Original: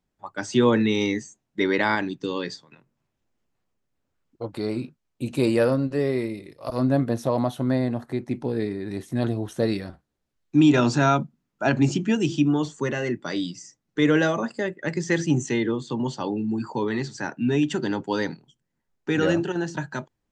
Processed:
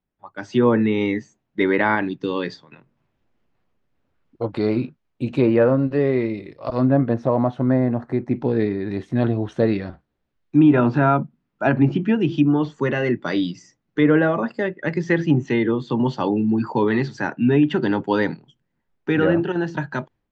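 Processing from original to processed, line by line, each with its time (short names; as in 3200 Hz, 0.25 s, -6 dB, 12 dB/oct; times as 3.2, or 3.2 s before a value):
7.14–8.36 bell 3400 Hz -9 dB 0.97 oct
whole clip: treble ducked by the level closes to 1800 Hz, closed at -16 dBFS; LPF 3300 Hz 12 dB/oct; AGC gain up to 11.5 dB; gain -4 dB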